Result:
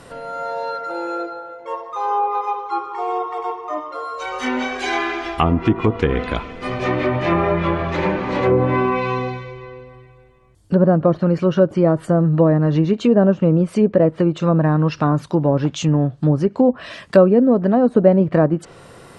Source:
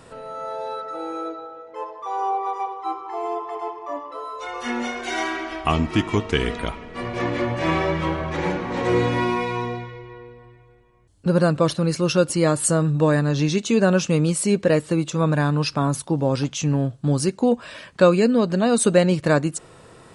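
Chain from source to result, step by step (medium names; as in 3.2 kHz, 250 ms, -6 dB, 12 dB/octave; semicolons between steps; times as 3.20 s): low-pass that closes with the level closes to 800 Hz, closed at -15 dBFS; tape speed +5%; trim +4.5 dB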